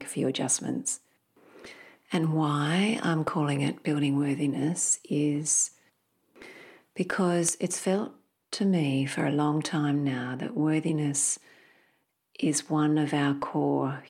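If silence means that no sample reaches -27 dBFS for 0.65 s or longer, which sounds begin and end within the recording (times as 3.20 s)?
2.12–5.65 s
7.00–11.34 s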